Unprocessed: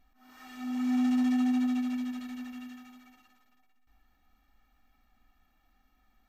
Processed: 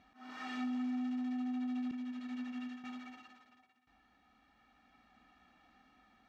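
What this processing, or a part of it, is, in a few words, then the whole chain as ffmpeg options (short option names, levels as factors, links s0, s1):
AM radio: -filter_complex "[0:a]highpass=120,lowpass=4400,acompressor=threshold=0.00891:ratio=4,asoftclip=type=tanh:threshold=0.015,tremolo=f=0.36:d=0.33,asettb=1/sr,asplit=3[s0][s1][s2];[s0]atrim=end=1.914[s3];[s1]atrim=start=1.91:end=2.84,asetpts=PTS-STARTPTS,afade=t=in:d=0.004:c=qsin,afade=t=out:st=0.926:d=0.004:c=qsin,agate=range=0.0224:threshold=0.00891:ratio=3:detection=peak[s4];[s2]atrim=start=2.836[s5];[s3][s4]acrossfade=d=0.004:c1=hsin:c2=qsin[s6];[s6][s5]acrossfade=d=0.004:c1=qsin:c2=hsin,volume=2.37"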